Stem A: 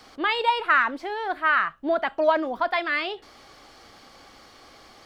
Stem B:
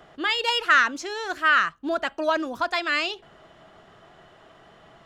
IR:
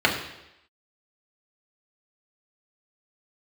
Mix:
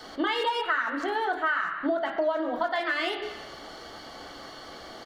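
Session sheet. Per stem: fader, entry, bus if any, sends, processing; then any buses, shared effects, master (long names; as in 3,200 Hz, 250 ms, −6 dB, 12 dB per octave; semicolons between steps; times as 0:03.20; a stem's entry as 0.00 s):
+1.5 dB, 0.00 s, send −15.5 dB, notch filter 2,500 Hz, Q 13
+1.5 dB, 24 ms, polarity flipped, no send, adaptive Wiener filter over 9 samples; elliptic high-pass filter 200 Hz; brickwall limiter −19.5 dBFS, peak gain reduction 10.5 dB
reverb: on, RT60 0.85 s, pre-delay 3 ms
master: downward compressor 6 to 1, threshold −25 dBFS, peak gain reduction 17 dB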